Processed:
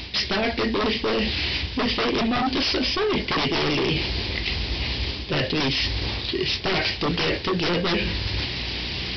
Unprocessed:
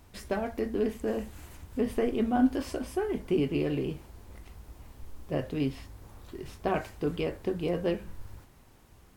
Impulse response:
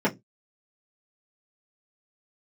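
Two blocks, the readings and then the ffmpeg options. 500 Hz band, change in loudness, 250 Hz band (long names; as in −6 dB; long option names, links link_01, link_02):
+5.0 dB, +7.5 dB, +4.0 dB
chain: -af "asoftclip=type=tanh:threshold=-15dB,aexciter=amount=8:drive=5.5:freq=2000,highpass=frequency=48:width=0.5412,highpass=frequency=48:width=1.3066,equalizer=frequency=370:width_type=o:width=0.61:gain=4.5,aresample=11025,aeval=exprs='0.376*sin(PI/2*7.08*val(0)/0.376)':channel_layout=same,aresample=44100,aeval=exprs='val(0)+0.0141*(sin(2*PI*60*n/s)+sin(2*PI*2*60*n/s)/2+sin(2*PI*3*60*n/s)/3+sin(2*PI*4*60*n/s)/4+sin(2*PI*5*60*n/s)/5)':channel_layout=same,areverse,acompressor=threshold=-25dB:ratio=6,areverse,volume=2.5dB"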